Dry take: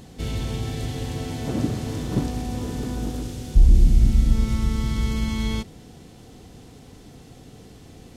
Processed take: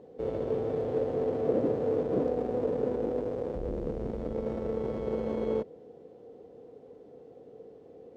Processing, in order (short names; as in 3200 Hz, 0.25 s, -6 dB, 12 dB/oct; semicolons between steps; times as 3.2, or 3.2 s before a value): in parallel at -5 dB: Schmitt trigger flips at -30.5 dBFS; on the sum: band-pass 480 Hz, Q 5.3; gain +7 dB